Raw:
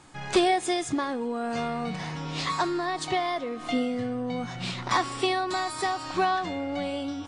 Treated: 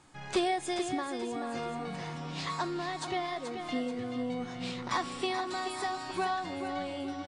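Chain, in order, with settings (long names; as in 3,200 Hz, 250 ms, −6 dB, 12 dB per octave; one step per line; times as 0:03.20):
repeating echo 432 ms, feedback 45%, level −8 dB
level −7 dB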